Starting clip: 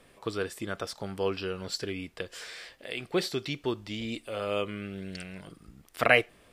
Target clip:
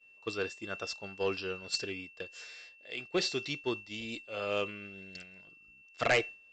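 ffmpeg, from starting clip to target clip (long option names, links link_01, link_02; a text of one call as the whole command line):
ffmpeg -i in.wav -af "aeval=exprs='val(0)+0.0112*sin(2*PI*2700*n/s)':channel_layout=same,bass=frequency=250:gain=-4,treble=frequency=4000:gain=7,aresample=16000,asoftclip=type=tanh:threshold=-18dB,aresample=44100,agate=range=-33dB:threshold=-30dB:ratio=3:detection=peak,volume=-1.5dB" out.wav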